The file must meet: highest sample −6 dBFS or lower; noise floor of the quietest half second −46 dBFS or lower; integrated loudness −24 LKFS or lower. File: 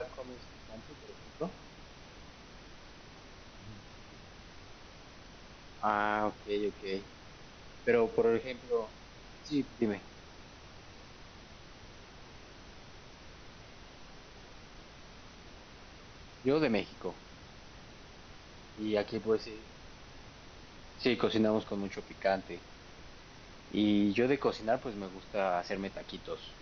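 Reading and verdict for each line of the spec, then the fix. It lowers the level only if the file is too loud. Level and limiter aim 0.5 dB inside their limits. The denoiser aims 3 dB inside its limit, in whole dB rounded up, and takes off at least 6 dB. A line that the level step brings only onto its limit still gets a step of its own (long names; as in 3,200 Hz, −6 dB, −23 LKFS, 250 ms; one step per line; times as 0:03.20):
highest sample −14.0 dBFS: in spec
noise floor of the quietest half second −52 dBFS: in spec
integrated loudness −33.5 LKFS: in spec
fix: no processing needed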